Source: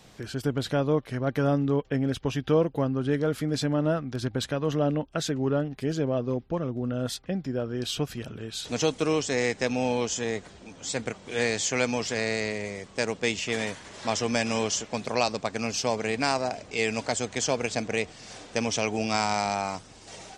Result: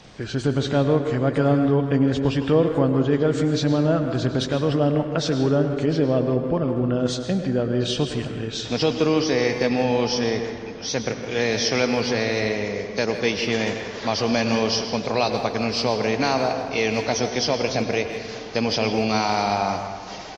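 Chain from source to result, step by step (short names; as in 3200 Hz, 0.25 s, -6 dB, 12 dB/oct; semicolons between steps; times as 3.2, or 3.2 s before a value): nonlinear frequency compression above 3500 Hz 1.5:1; dynamic EQ 1900 Hz, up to -3 dB, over -40 dBFS, Q 0.87; in parallel at +1.5 dB: limiter -19.5 dBFS, peak gain reduction 8 dB; on the sum: speakerphone echo 0.16 s, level -10 dB; plate-style reverb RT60 1.9 s, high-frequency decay 0.5×, pre-delay 85 ms, DRR 7 dB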